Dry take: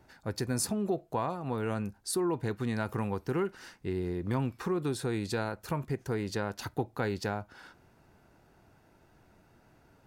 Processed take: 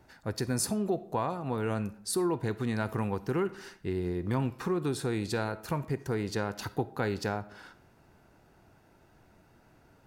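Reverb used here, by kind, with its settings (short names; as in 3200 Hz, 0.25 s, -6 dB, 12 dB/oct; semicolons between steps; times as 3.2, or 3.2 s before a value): digital reverb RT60 0.67 s, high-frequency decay 0.65×, pre-delay 10 ms, DRR 15.5 dB; gain +1 dB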